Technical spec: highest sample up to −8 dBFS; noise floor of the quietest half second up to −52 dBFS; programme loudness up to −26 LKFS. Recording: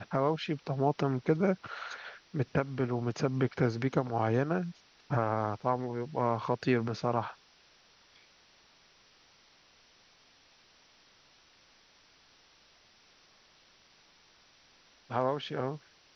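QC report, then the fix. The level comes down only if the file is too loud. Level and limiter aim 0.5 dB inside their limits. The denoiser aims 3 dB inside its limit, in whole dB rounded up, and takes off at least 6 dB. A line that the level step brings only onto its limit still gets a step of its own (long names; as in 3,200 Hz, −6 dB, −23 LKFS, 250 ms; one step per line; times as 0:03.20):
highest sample −13.0 dBFS: in spec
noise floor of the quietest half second −63 dBFS: in spec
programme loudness −32.0 LKFS: in spec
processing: no processing needed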